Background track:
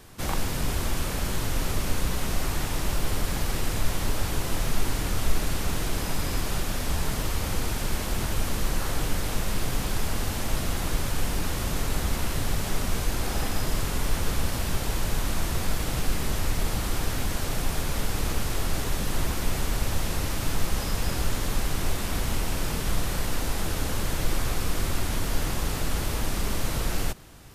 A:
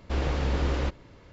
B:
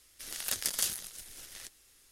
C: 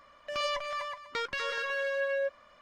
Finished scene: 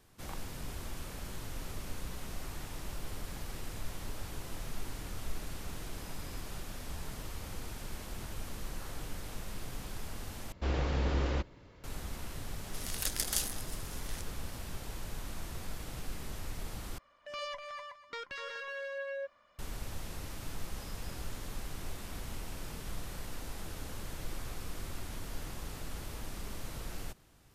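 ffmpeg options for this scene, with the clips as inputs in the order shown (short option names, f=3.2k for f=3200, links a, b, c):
-filter_complex "[0:a]volume=-14.5dB,asplit=3[a][b][c];[a]atrim=end=10.524[d];[1:a]atrim=end=1.32,asetpts=PTS-STARTPTS,volume=-4.5dB[e];[b]atrim=start=11.836:end=16.984[f];[3:a]atrim=end=2.61,asetpts=PTS-STARTPTS,volume=-8.5dB[g];[c]atrim=start=19.586[h];[2:a]atrim=end=2.11,asetpts=PTS-STARTPTS,volume=-2dB,afade=t=in:d=0.004:c=hsin,afade=t=out:st=2.106:d=0.004:c=hsin,adelay=12540[i];[d][e]acrossfade=d=0.004:c1=hsin:c2=hsin[j];[j][f]acrossfade=d=0.004:c1=hsin:c2=hsin[k];[k][g]acrossfade=d=0.004:c1=hsin:c2=hsin[l];[l][h]acrossfade=d=0.004:c1=hsin:c2=hsin[m];[m][i]amix=inputs=2:normalize=0"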